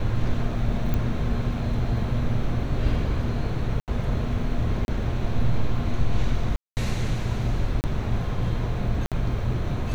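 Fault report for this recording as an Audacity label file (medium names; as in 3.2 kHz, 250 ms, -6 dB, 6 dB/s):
0.940000	0.940000	pop -14 dBFS
3.800000	3.880000	dropout 78 ms
4.850000	4.880000	dropout 31 ms
6.560000	6.770000	dropout 209 ms
7.810000	7.840000	dropout 29 ms
9.060000	9.120000	dropout 57 ms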